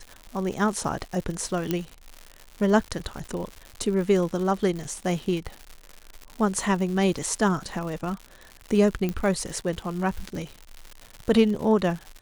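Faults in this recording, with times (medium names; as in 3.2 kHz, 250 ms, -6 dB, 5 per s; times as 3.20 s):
crackle 180 per s -32 dBFS
1.71 s: pop -11 dBFS
9.09 s: pop -15 dBFS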